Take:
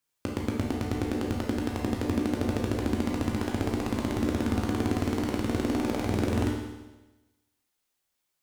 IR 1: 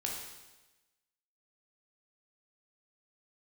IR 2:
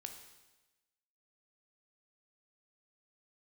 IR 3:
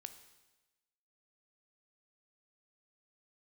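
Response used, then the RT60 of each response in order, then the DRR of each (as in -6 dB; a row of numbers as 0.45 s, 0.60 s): 1; 1.1 s, 1.1 s, 1.1 s; -2.0 dB, 4.5 dB, 9.0 dB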